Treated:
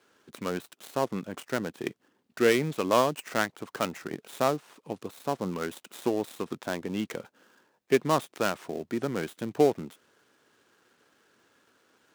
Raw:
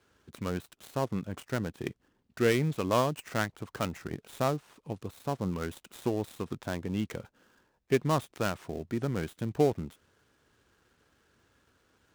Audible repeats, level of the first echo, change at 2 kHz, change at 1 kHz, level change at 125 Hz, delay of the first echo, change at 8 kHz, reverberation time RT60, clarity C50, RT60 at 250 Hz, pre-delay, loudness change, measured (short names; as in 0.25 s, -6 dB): none, none, +4.0 dB, +4.0 dB, -5.0 dB, none, +4.0 dB, none, none, none, none, +2.5 dB